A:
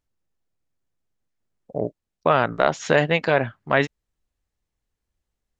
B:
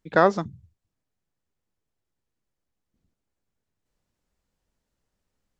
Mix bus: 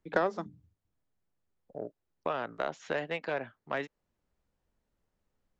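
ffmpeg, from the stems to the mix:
-filter_complex "[0:a]volume=0.282[s0];[1:a]highshelf=f=3200:g=-11.5,bandreject=f=50:t=h:w=6,bandreject=f=100:t=h:w=6,bandreject=f=150:t=h:w=6,bandreject=f=200:t=h:w=6,bandreject=f=250:t=h:w=6,bandreject=f=300:t=h:w=6,volume=1.33[s1];[s0][s1]amix=inputs=2:normalize=0,acrossover=split=210|550|3700[s2][s3][s4][s5];[s2]acompressor=threshold=0.00178:ratio=4[s6];[s3]acompressor=threshold=0.0251:ratio=4[s7];[s4]acompressor=threshold=0.0316:ratio=4[s8];[s5]acompressor=threshold=0.00178:ratio=4[s9];[s6][s7][s8][s9]amix=inputs=4:normalize=0,aeval=exprs='0.251*(cos(1*acos(clip(val(0)/0.251,-1,1)))-cos(1*PI/2))+0.00891*(cos(7*acos(clip(val(0)/0.251,-1,1)))-cos(7*PI/2))':c=same"

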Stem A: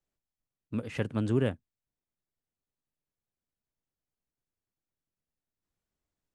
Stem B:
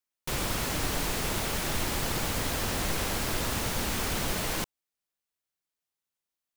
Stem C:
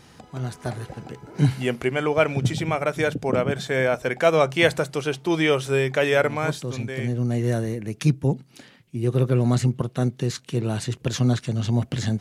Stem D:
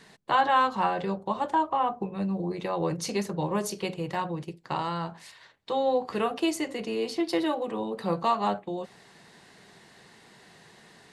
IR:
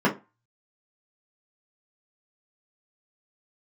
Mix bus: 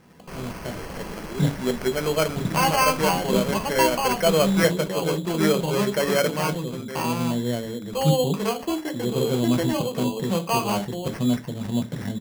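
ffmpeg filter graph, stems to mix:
-filter_complex "[0:a]highpass=380,volume=0.794[s0];[1:a]volume=0.473,asplit=2[s1][s2];[s2]volume=0.0631[s3];[2:a]volume=0.531,asplit=2[s4][s5];[s5]volume=0.0944[s6];[3:a]adelay=2250,volume=0.944,asplit=2[s7][s8];[s8]volume=0.0668[s9];[4:a]atrim=start_sample=2205[s10];[s3][s6][s9]amix=inputs=3:normalize=0[s11];[s11][s10]afir=irnorm=-1:irlink=0[s12];[s0][s1][s4][s7][s12]amix=inputs=5:normalize=0,lowpass=f=5200:w=0.5412,lowpass=f=5200:w=1.3066,acrusher=samples=12:mix=1:aa=0.000001"

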